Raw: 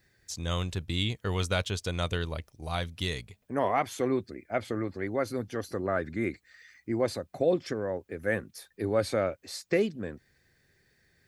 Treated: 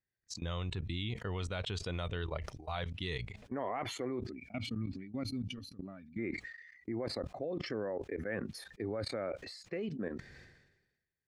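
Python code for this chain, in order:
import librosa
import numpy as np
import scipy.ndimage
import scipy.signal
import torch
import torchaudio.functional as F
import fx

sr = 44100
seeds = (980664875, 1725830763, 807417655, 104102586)

y = fx.spec_box(x, sr, start_s=4.32, length_s=1.86, low_hz=280.0, high_hz=2200.0, gain_db=-15)
y = fx.noise_reduce_blind(y, sr, reduce_db=11)
y = fx.level_steps(y, sr, step_db=19)
y = fx.air_absorb(y, sr, metres=92.0)
y = fx.sustainer(y, sr, db_per_s=54.0)
y = F.gain(torch.from_numpy(y), 1.5).numpy()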